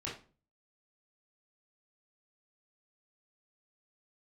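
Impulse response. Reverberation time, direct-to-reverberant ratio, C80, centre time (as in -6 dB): 0.40 s, -6.5 dB, 12.5 dB, 33 ms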